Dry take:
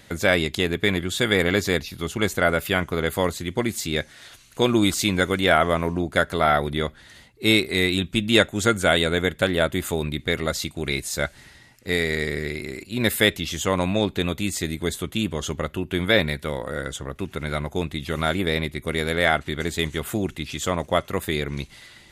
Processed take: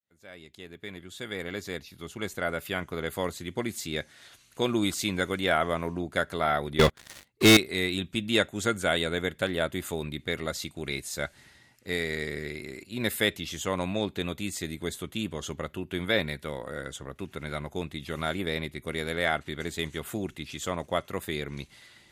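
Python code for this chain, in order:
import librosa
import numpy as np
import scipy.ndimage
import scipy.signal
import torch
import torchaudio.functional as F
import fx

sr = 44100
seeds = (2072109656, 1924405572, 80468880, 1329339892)

y = fx.fade_in_head(x, sr, length_s=3.5)
y = fx.highpass(y, sr, hz=81.0, slope=6)
y = fx.leveller(y, sr, passes=5, at=(6.79, 7.57))
y = y * librosa.db_to_amplitude(-7.0)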